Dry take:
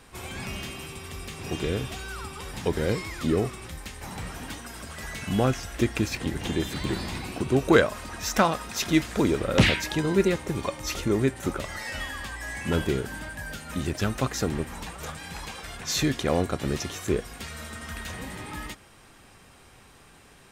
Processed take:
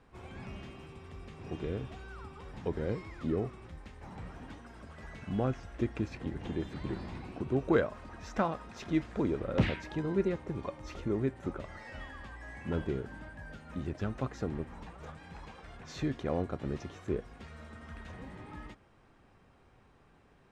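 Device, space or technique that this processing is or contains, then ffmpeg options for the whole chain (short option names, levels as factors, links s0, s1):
through cloth: -af "lowpass=7500,highshelf=f=2500:g=-16.5,volume=0.422"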